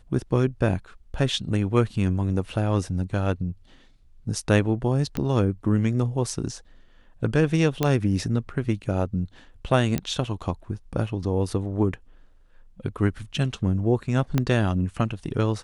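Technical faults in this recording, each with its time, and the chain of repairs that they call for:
0:05.17: click −14 dBFS
0:07.83: click −8 dBFS
0:09.98: click −11 dBFS
0:14.38: click −9 dBFS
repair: click removal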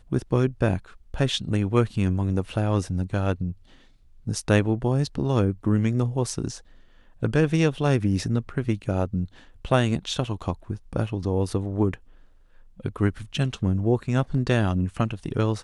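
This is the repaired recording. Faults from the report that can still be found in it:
0:05.17: click
0:14.38: click

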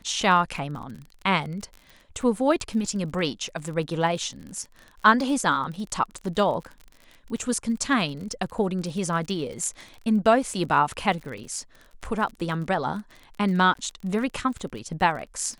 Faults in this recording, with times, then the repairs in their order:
surface crackle 37 per second −34 dBFS
0:13.74–0:13.75: drop-out 13 ms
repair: click removal
repair the gap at 0:13.74, 13 ms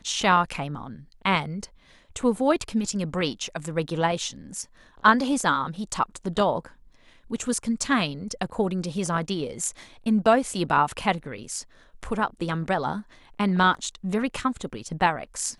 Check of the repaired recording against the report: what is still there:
none of them is left

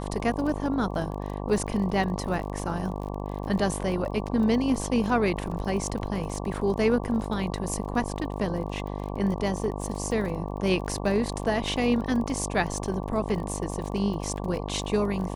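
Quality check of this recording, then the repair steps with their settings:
mains buzz 50 Hz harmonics 23 −33 dBFS
surface crackle 28 per second −34 dBFS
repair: click removal
hum removal 50 Hz, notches 23

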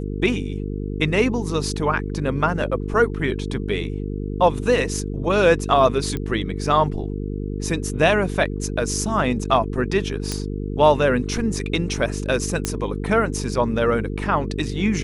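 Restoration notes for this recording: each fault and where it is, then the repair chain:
mains buzz 50 Hz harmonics 9 −27 dBFS
0:06.17: click −14 dBFS
0:10.32: click −10 dBFS
0:12.65: click −7 dBFS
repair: click removal
hum removal 50 Hz, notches 9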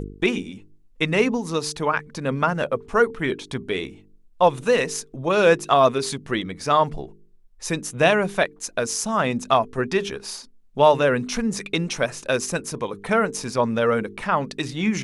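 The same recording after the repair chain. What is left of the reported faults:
none of them is left

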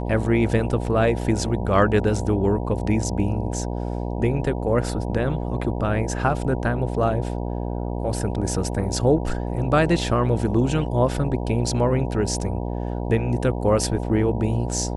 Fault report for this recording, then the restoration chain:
mains buzz 60 Hz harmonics 16 −27 dBFS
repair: hum removal 60 Hz, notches 16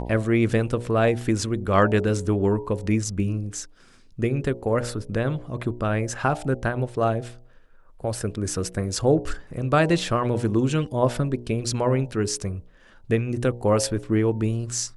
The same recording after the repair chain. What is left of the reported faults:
none of them is left

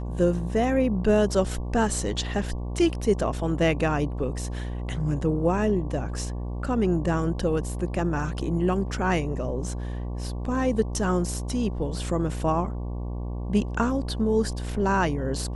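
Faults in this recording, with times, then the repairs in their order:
mains buzz 60 Hz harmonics 19 −31 dBFS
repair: hum removal 60 Hz, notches 19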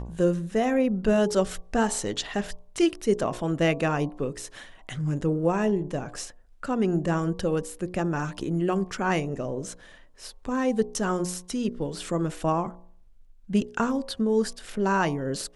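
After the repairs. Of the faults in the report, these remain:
none of them is left

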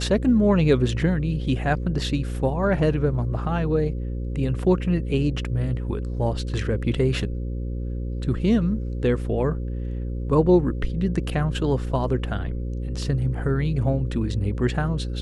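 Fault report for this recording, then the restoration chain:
mains buzz 60 Hz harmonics 9 −28 dBFS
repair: hum removal 60 Hz, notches 9

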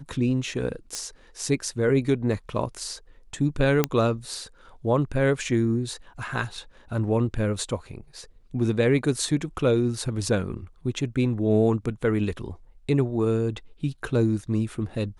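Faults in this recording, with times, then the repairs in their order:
0:00.95: click −16 dBFS
0:03.84: click −6 dBFS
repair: click removal

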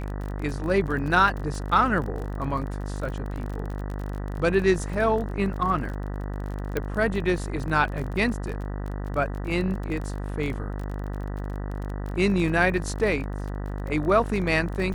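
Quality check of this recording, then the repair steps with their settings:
mains buzz 50 Hz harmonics 39 −31 dBFS
surface crackle 31 per second −32 dBFS
0:06.77: click −13 dBFS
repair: click removal
hum removal 50 Hz, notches 39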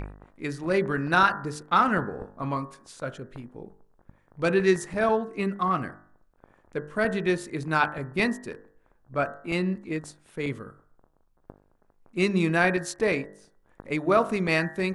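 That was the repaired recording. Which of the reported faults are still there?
none of them is left

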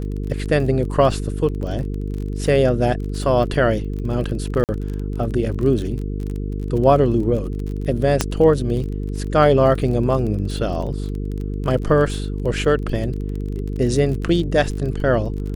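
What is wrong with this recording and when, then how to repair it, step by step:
mains buzz 50 Hz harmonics 9 −25 dBFS
surface crackle 26 per second −27 dBFS
0:04.64–0:04.69: drop-out 48 ms
0:08.21: click −2 dBFS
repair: click removal
hum removal 50 Hz, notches 9
repair the gap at 0:04.64, 48 ms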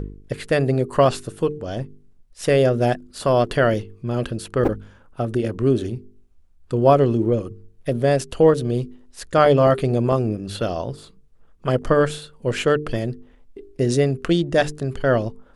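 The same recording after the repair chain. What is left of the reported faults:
none of them is left

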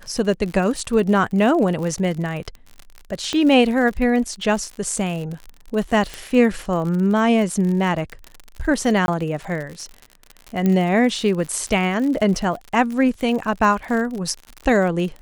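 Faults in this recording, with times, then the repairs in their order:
surface crackle 59 per second −27 dBFS
0:03.33: click −11 dBFS
0:06.14: click
0:09.06–0:09.08: drop-out 21 ms
0:10.66: click −9 dBFS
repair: click removal
repair the gap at 0:09.06, 21 ms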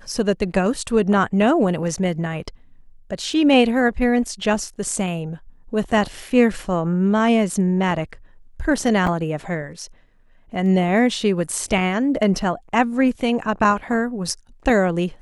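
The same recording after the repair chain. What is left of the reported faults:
0:03.33: click
0:10.66: click

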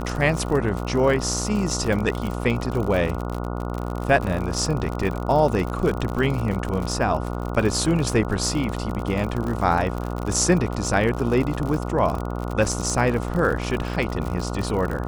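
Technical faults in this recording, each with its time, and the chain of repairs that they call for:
mains buzz 60 Hz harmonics 24 −28 dBFS
surface crackle 59 per second −26 dBFS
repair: click removal
hum removal 60 Hz, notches 24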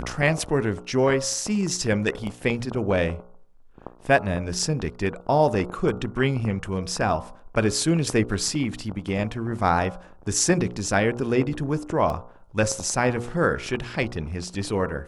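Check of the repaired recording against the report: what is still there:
none of them is left

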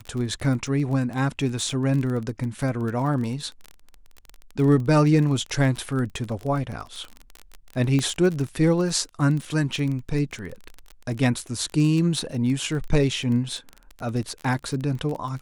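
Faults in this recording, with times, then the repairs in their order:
surface crackle 26 per second −28 dBFS
0:07.99: click −13 dBFS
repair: click removal

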